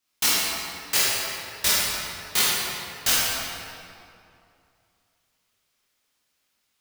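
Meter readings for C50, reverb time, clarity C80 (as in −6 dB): −4.5 dB, 2.6 s, −2.0 dB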